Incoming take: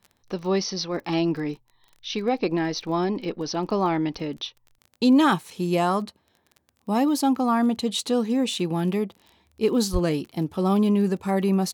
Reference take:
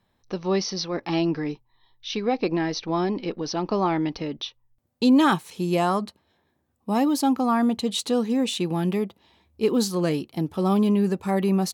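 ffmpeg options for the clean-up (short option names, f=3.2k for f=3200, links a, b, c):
-filter_complex "[0:a]adeclick=t=4,asplit=3[a][b][c];[a]afade=t=out:st=9.92:d=0.02[d];[b]highpass=f=140:w=0.5412,highpass=f=140:w=1.3066,afade=t=in:st=9.92:d=0.02,afade=t=out:st=10.04:d=0.02[e];[c]afade=t=in:st=10.04:d=0.02[f];[d][e][f]amix=inputs=3:normalize=0"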